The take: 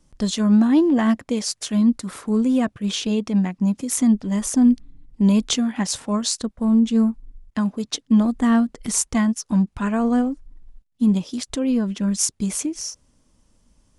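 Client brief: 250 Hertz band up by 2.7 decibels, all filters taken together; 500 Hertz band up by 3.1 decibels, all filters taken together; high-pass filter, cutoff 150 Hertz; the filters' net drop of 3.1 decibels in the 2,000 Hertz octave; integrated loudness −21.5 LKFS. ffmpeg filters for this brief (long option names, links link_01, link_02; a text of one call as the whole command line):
ffmpeg -i in.wav -af "highpass=150,equalizer=frequency=250:width_type=o:gain=3.5,equalizer=frequency=500:width_type=o:gain=3,equalizer=frequency=2000:width_type=o:gain=-4,volume=-3dB" out.wav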